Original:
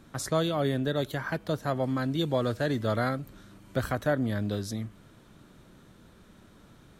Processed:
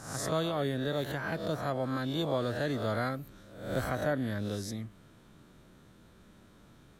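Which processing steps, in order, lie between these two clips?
spectral swells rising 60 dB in 0.65 s; gain -5 dB

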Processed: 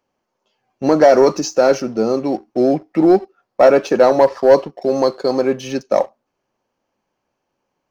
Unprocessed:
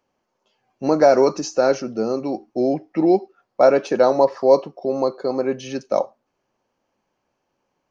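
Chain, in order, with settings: 4.81–5.48 bell 5900 Hz +7.5 dB 1.8 oct; sample leveller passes 1; gain +1.5 dB

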